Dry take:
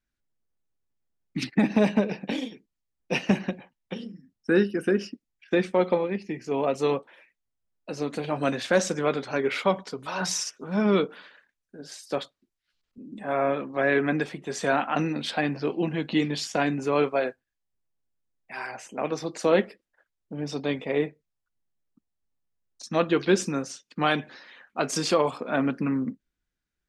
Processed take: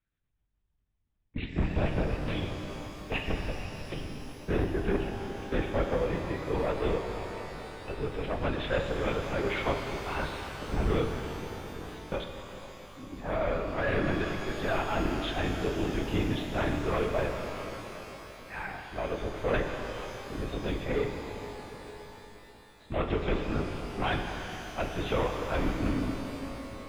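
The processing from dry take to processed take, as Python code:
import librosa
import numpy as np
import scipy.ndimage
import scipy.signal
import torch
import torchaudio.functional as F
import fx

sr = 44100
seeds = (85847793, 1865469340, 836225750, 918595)

y = 10.0 ** (-21.0 / 20.0) * np.tanh(x / 10.0 ** (-21.0 / 20.0))
y = fx.lpc_vocoder(y, sr, seeds[0], excitation='whisper', order=10)
y = fx.rev_shimmer(y, sr, seeds[1], rt60_s=4.0, semitones=12, shimmer_db=-8, drr_db=3.5)
y = y * 10.0 ** (-2.5 / 20.0)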